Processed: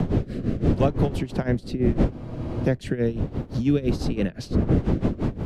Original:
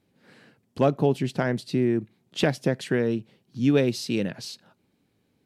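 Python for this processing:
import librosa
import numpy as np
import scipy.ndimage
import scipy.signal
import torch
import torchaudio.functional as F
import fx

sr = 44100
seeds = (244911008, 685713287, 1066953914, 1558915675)

p1 = fx.dmg_wind(x, sr, seeds[0], corner_hz=240.0, level_db=-23.0)
p2 = fx.rotary_switch(p1, sr, hz=0.75, then_hz=5.0, switch_at_s=3.39)
p3 = fx.rider(p2, sr, range_db=5, speed_s=0.5)
p4 = p2 + (p3 * librosa.db_to_amplitude(-3.0))
p5 = p4 * (1.0 - 0.86 / 2.0 + 0.86 / 2.0 * np.cos(2.0 * np.pi * 5.9 * (np.arange(len(p4)) / sr)))
p6 = fx.spec_freeze(p5, sr, seeds[1], at_s=2.13, hold_s=0.52)
p7 = fx.band_squash(p6, sr, depth_pct=70)
y = p7 * librosa.db_to_amplitude(-1.5)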